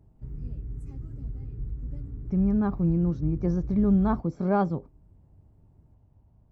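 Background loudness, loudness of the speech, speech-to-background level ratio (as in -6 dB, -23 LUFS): -38.5 LUFS, -26.0 LUFS, 12.5 dB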